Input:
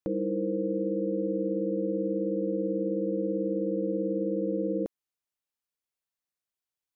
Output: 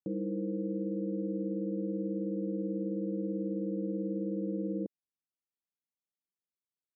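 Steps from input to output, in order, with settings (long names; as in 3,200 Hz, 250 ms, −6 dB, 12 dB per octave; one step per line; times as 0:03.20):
four-pole ladder band-pass 220 Hz, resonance 20%
level +8 dB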